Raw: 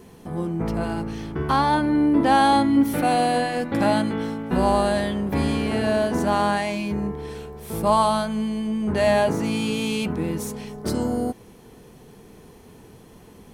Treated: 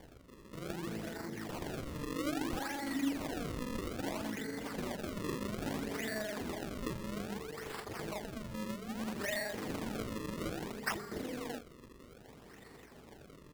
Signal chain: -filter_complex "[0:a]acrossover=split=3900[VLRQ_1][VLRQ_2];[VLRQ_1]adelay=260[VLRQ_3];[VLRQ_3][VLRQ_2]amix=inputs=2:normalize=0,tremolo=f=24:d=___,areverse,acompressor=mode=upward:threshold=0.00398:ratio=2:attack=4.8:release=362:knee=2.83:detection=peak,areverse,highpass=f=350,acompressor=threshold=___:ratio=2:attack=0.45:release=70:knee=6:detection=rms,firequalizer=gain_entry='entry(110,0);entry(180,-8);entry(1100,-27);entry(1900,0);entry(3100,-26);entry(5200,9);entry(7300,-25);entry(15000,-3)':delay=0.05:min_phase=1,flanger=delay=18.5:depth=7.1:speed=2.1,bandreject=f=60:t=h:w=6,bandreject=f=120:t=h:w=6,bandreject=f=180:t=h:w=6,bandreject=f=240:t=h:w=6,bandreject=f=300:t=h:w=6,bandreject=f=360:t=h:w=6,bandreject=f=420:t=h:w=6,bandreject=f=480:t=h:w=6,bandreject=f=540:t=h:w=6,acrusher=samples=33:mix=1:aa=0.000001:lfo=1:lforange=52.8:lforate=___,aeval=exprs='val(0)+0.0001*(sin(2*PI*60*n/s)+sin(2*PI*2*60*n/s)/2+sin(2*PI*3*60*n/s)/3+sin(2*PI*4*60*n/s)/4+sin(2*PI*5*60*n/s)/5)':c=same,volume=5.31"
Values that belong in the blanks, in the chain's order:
0.974, 0.0141, 0.61